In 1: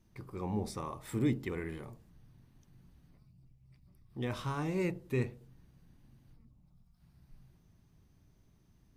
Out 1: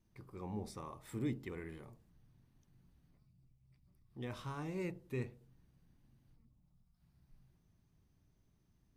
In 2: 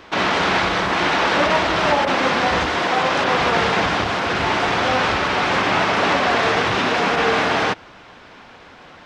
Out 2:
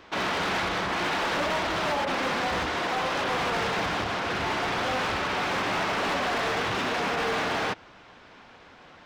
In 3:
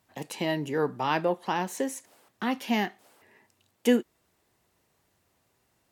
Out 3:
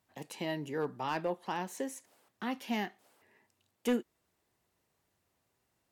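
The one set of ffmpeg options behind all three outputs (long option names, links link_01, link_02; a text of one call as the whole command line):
ffmpeg -i in.wav -af "asoftclip=type=hard:threshold=-16dB,volume=-7.5dB" out.wav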